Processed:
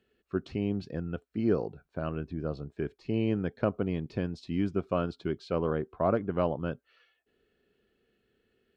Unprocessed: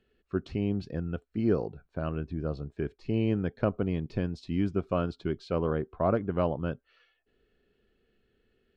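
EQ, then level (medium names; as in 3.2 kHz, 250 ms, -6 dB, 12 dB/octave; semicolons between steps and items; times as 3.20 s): high-pass 110 Hz 6 dB/octave; 0.0 dB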